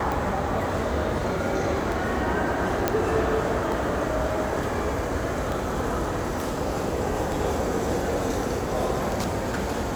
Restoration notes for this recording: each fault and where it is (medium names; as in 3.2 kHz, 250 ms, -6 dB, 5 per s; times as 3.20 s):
tick
2.88 s: pop -7 dBFS